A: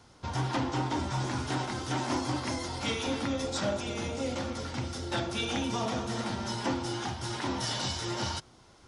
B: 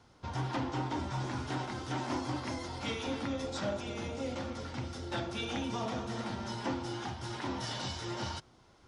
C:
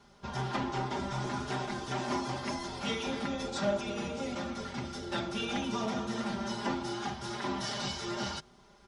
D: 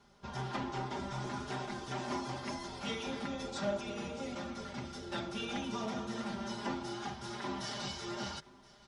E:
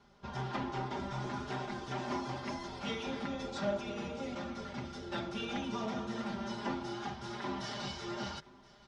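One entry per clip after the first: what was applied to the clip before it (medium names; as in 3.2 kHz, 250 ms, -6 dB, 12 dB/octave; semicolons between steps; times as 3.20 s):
treble shelf 6.9 kHz -10 dB; trim -4 dB
comb 5 ms, depth 98%
delay 1023 ms -21.5 dB; trim -4.5 dB
distance through air 77 m; trim +1 dB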